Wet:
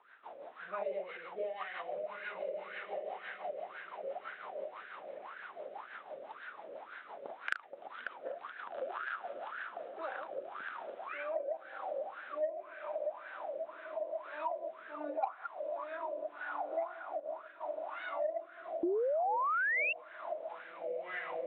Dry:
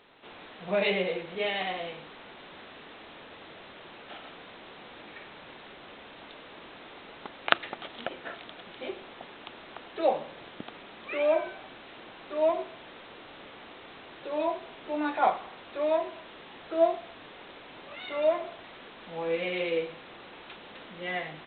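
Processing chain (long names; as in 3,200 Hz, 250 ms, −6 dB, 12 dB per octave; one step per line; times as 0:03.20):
delay that plays each chunk backwards 130 ms, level −7.5 dB
on a send: feedback delay with all-pass diffusion 1,558 ms, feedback 41%, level −5.5 dB
on the sum: LFO wah 1.9 Hz 540–1,600 Hz, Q 9.3
harmonic generator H 7 −28 dB, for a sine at −11 dBFS
rotating-speaker cabinet horn 6 Hz, later 0.85 Hz, at 0:09.51
0:18.83–0:19.93: sound drawn into the spectrogram rise 330–2,800 Hz −31 dBFS
downward compressor 3 to 1, threshold −53 dBFS, peak gain reduction 19.5 dB
0:17.20–0:17.72: downward expander −55 dBFS
level +15.5 dB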